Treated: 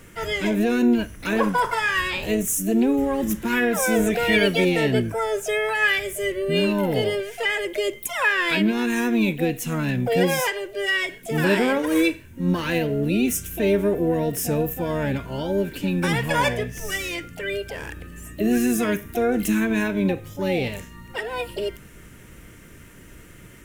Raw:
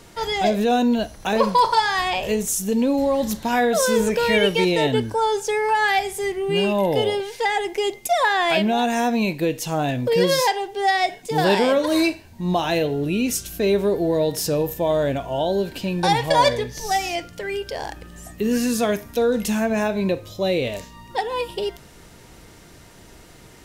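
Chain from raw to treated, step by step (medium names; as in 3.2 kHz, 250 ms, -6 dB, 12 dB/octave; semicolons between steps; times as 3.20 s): static phaser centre 1.8 kHz, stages 4; harmony voices +7 st -8 dB; trim +2 dB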